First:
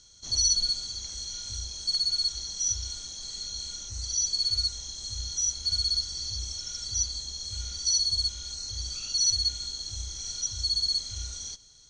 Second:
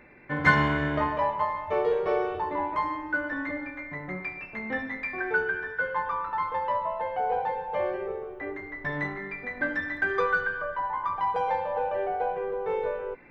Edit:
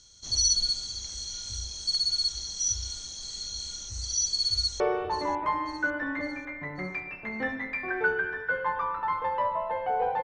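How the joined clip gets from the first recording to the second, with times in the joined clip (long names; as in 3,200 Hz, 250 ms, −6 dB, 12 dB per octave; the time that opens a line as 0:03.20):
first
0:04.55–0:04.80: delay throw 550 ms, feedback 55%, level −14.5 dB
0:04.80: continue with second from 0:02.10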